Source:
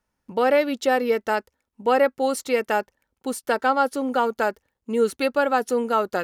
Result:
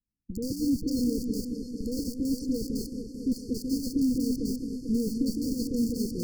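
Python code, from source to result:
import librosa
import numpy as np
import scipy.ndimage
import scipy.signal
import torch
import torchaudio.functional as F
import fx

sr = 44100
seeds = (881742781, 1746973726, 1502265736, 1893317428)

p1 = fx.rattle_buzz(x, sr, strikes_db=-38.0, level_db=-15.0)
p2 = fx.air_absorb(p1, sr, metres=170.0)
p3 = p2 + 10.0 ** (-23.5 / 20.0) * np.pad(p2, (int(228 * sr / 1000.0), 0))[:len(p2)]
p4 = fx.schmitt(p3, sr, flips_db=-29.0)
p5 = p3 + F.gain(torch.from_numpy(p4), -9.0).numpy()
p6 = fx.leveller(p5, sr, passes=2)
p7 = fx.brickwall_bandstop(p6, sr, low_hz=520.0, high_hz=4300.0)
p8 = fx.band_shelf(p7, sr, hz=670.0, db=-16.0, octaves=1.7)
p9 = fx.dispersion(p8, sr, late='highs', ms=56.0, hz=940.0)
p10 = p9 + fx.echo_opening(p9, sr, ms=223, hz=400, octaves=2, feedback_pct=70, wet_db=-6, dry=0)
y = F.gain(torch.from_numpy(p10), -6.5).numpy()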